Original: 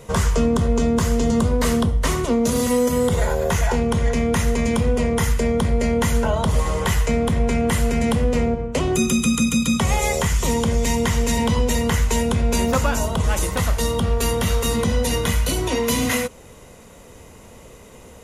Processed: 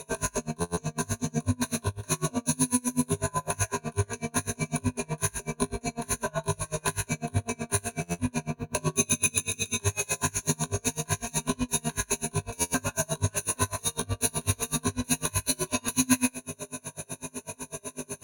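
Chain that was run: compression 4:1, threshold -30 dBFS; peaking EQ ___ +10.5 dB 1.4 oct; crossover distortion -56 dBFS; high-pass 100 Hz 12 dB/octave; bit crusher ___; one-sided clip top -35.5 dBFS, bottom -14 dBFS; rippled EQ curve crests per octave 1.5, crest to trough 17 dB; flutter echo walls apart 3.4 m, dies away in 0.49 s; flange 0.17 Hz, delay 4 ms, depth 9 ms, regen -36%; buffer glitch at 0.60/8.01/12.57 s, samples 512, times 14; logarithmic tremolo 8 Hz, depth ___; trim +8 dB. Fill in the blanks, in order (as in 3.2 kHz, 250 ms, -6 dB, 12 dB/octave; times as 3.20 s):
12 kHz, 11-bit, 33 dB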